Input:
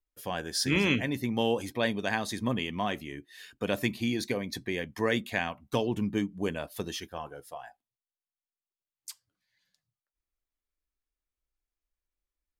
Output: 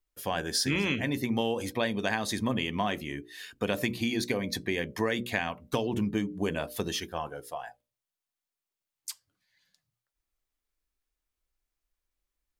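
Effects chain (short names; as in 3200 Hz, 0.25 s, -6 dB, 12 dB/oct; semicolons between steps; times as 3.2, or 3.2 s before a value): notches 60/120/180/240/300/360/420/480/540/600 Hz; compressor, threshold -29 dBFS, peak gain reduction 8 dB; gain +4.5 dB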